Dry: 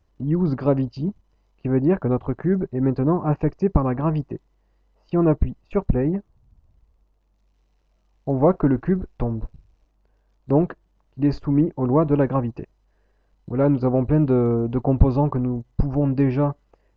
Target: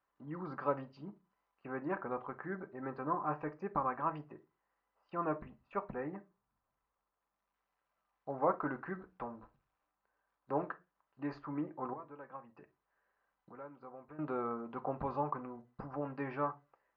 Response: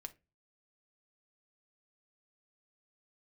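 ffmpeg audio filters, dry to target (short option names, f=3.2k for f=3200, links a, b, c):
-filter_complex "[0:a]asettb=1/sr,asplit=3[a][b][c];[a]atrim=end=11.934[d];[b]atrim=start=11.93:end=14.19,asetpts=PTS-STARTPTS,afade=t=in:d=0.004:c=qsin,afade=t=out:st=2.256:d=0.004:c=qsin,acompressor=threshold=-30dB:ratio=20[e];[c]atrim=start=14.186[f];[d][e]acrossfade=d=0.004:c1=hsin:c2=qsin[g];[g][f]acrossfade=d=0.004:c1=qsin:c2=hsin,bandpass=f=1.3k:t=q:w=2:csg=0[h];[1:a]atrim=start_sample=2205,afade=t=out:st=0.29:d=0.01,atrim=end_sample=13230[i];[h][i]afir=irnorm=-1:irlink=0,volume=3dB"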